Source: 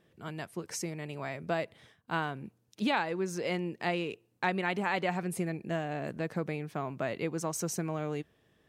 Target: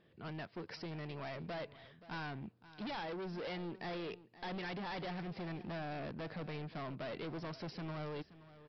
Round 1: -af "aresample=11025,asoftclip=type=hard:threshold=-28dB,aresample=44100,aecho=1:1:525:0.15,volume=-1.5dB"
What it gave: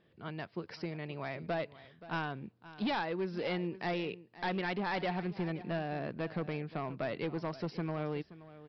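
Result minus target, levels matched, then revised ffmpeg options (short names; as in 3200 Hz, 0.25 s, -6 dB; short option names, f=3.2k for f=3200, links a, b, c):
hard clip: distortion -8 dB
-af "aresample=11025,asoftclip=type=hard:threshold=-39dB,aresample=44100,aecho=1:1:525:0.15,volume=-1.5dB"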